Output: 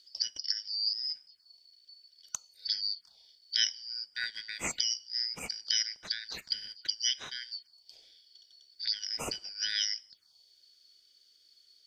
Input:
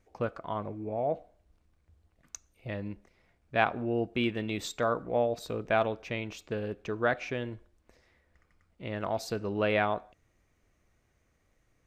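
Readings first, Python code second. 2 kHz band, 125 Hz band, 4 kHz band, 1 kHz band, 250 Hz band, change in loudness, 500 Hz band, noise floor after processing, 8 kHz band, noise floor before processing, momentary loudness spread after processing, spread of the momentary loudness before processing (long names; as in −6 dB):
−5.5 dB, −20.5 dB, +14.5 dB, −18.5 dB, −20.5 dB, −0.5 dB, −23.5 dB, −66 dBFS, +12.0 dB, −72 dBFS, 10 LU, 13 LU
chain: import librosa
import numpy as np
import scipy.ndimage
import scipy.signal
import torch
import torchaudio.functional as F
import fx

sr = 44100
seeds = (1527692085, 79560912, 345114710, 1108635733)

y = fx.band_shuffle(x, sr, order='4321')
y = fx.env_phaser(y, sr, low_hz=150.0, high_hz=4400.0, full_db=-31.5)
y = F.gain(torch.from_numpy(y), 7.5).numpy()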